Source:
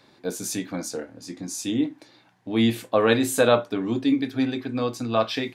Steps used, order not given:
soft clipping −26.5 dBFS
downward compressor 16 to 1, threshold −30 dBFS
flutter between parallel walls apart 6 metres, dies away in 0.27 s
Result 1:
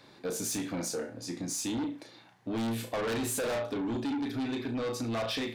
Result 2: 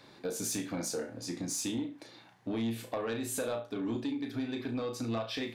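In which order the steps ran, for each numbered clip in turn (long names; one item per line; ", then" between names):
flutter between parallel walls, then soft clipping, then downward compressor
downward compressor, then flutter between parallel walls, then soft clipping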